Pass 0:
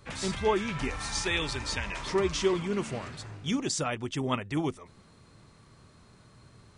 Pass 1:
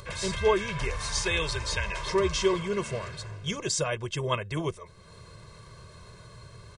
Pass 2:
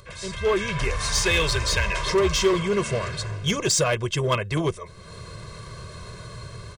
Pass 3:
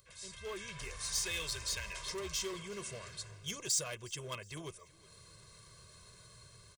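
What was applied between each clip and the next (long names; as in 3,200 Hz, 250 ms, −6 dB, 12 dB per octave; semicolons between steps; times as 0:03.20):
upward compression, threshold −43 dBFS; comb filter 1.9 ms, depth 87%
notch filter 890 Hz, Q 12; automatic gain control gain up to 13.5 dB; in parallel at −7 dB: wave folding −14.5 dBFS; on the sum: level −7 dB
first-order pre-emphasis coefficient 0.8; repeating echo 364 ms, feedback 42%, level −23 dB; level −8 dB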